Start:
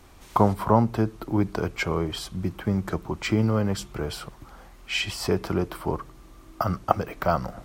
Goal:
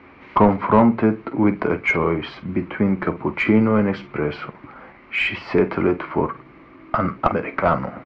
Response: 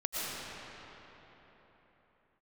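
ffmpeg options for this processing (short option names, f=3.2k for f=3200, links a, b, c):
-filter_complex "[0:a]highpass=150,equalizer=f=260:t=q:w=4:g=5,equalizer=f=740:t=q:w=4:g=-5,equalizer=f=2.2k:t=q:w=4:g=9,equalizer=f=3.5k:t=q:w=4:g=-7,lowpass=f=3.9k:w=0.5412,lowpass=f=3.9k:w=1.3066,aecho=1:1:14|47:0.266|0.2,atempo=0.95,asplit=2[a][b];[b]highpass=f=720:p=1,volume=16dB,asoftclip=type=tanh:threshold=-4dB[c];[a][c]amix=inputs=2:normalize=0,lowpass=f=2.1k:p=1,volume=-6dB,aemphasis=mode=reproduction:type=bsi"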